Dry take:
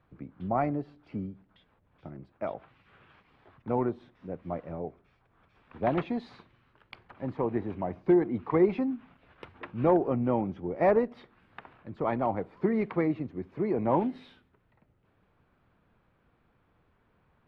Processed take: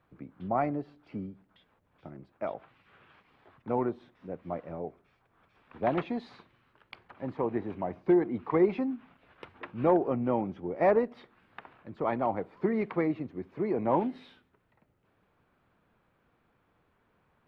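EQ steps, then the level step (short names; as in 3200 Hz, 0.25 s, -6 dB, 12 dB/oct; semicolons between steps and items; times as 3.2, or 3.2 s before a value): low shelf 140 Hz -7.5 dB; 0.0 dB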